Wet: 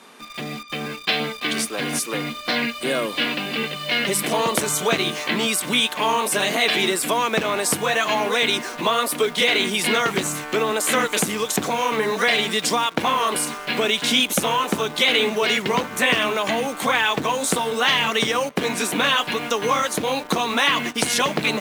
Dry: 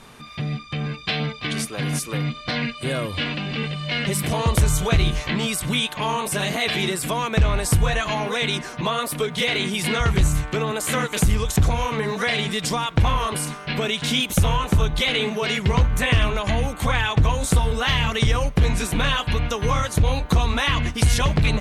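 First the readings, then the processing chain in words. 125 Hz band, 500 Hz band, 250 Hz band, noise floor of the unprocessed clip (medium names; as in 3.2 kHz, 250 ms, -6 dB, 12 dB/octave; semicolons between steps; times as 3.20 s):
-14.0 dB, +4.0 dB, -0.5 dB, -38 dBFS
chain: high-pass 230 Hz 24 dB/octave; in parallel at -5 dB: bit crusher 6-bit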